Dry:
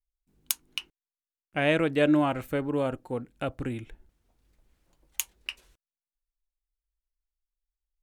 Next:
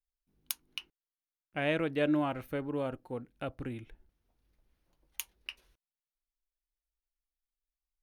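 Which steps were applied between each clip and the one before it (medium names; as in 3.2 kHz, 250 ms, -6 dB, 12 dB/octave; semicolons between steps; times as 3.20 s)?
peaking EQ 7.6 kHz -14 dB 0.26 oct; trim -6.5 dB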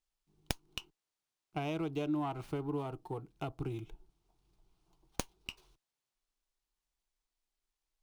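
compression 3:1, threshold -37 dBFS, peak gain reduction 9.5 dB; static phaser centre 360 Hz, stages 8; sliding maximum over 3 samples; trim +6 dB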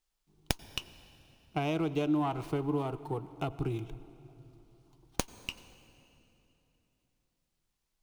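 reverberation RT60 3.3 s, pre-delay 84 ms, DRR 16 dB; trim +5 dB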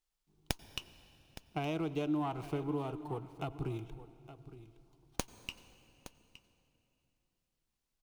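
delay 866 ms -15 dB; trim -4.5 dB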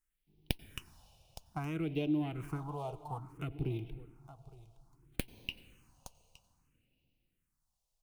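phase shifter stages 4, 0.6 Hz, lowest notch 280–1300 Hz; trim +2 dB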